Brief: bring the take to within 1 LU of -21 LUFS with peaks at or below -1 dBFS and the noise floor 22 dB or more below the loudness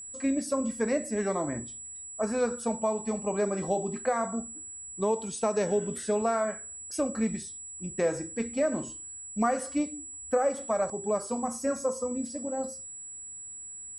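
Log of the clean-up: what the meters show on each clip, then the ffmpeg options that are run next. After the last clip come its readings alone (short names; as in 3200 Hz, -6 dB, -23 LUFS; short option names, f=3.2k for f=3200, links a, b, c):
steady tone 7800 Hz; tone level -40 dBFS; loudness -31.0 LUFS; peak -16.0 dBFS; loudness target -21.0 LUFS
-> -af "bandreject=f=7.8k:w=30"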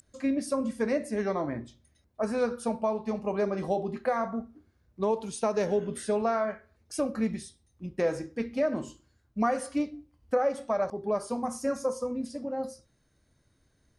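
steady tone none; loudness -30.5 LUFS; peak -16.5 dBFS; loudness target -21.0 LUFS
-> -af "volume=9.5dB"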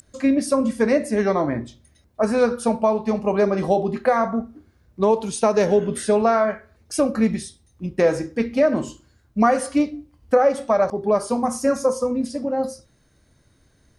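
loudness -21.0 LUFS; peak -7.0 dBFS; noise floor -60 dBFS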